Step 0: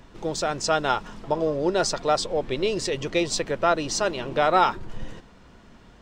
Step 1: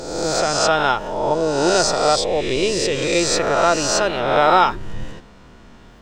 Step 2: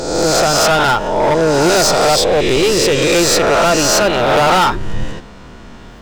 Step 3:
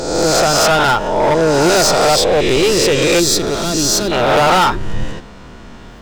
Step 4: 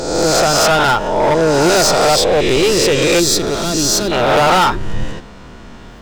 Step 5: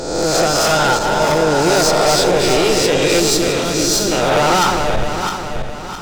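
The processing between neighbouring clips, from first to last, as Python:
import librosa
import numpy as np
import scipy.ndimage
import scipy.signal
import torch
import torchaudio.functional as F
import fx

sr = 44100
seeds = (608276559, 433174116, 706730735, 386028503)

y1 = fx.spec_swells(x, sr, rise_s=1.2)
y1 = y1 * 10.0 ** (3.0 / 20.0)
y2 = np.clip(10.0 ** (18.0 / 20.0) * y1, -1.0, 1.0) / 10.0 ** (18.0 / 20.0)
y2 = y2 * 10.0 ** (9.0 / 20.0)
y3 = fx.spec_box(y2, sr, start_s=3.2, length_s=0.92, low_hz=440.0, high_hz=3200.0, gain_db=-11)
y4 = y3
y5 = fx.reverse_delay_fb(y4, sr, ms=331, feedback_pct=63, wet_db=-5.0)
y5 = y5 * 10.0 ** (-3.0 / 20.0)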